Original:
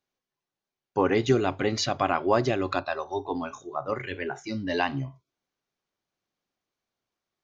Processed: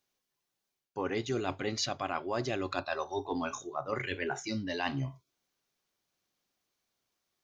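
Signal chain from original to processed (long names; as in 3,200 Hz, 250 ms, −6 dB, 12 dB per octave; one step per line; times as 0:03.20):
high-shelf EQ 3,300 Hz +8.5 dB
reversed playback
downward compressor 6 to 1, threshold −30 dBFS, peak gain reduction 13.5 dB
reversed playback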